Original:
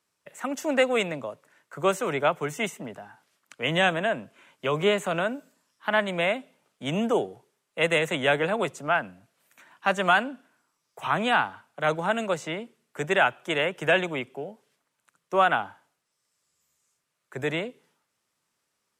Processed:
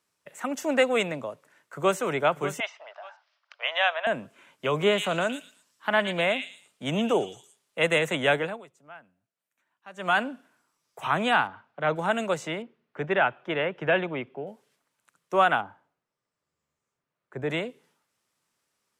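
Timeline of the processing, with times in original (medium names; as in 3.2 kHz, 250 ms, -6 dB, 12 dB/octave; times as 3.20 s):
1.21–1.98 s: echo throw 590 ms, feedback 35%, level -11.5 dB
2.60–4.07 s: Chebyshev band-pass 610–5300 Hz, order 4
4.72–7.79 s: repeats whose band climbs or falls 115 ms, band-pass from 3.5 kHz, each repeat 0.7 oct, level -1 dB
8.33–10.22 s: dip -22 dB, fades 0.29 s
11.47–11.96 s: distance through air 240 m
12.62–14.47 s: distance through air 300 m
15.61–17.50 s: low-pass 1 kHz 6 dB/octave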